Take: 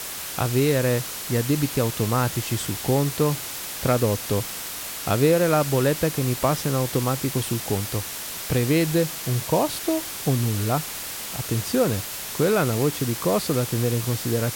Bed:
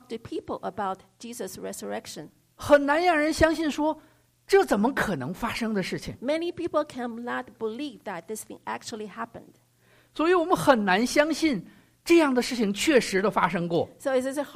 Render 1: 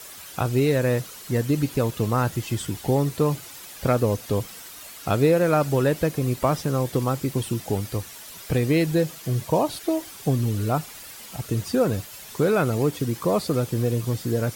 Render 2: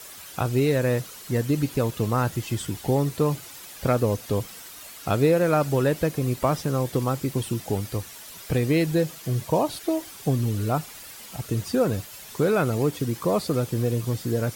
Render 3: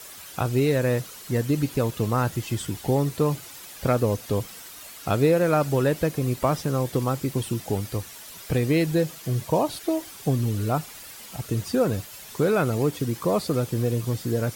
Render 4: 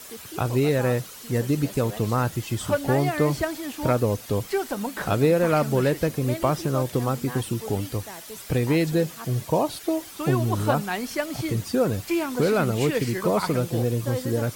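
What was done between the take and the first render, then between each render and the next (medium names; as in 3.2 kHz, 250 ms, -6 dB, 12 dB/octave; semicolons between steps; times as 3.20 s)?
noise reduction 11 dB, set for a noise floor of -33 dBFS
trim -1 dB
no audible change
add bed -6.5 dB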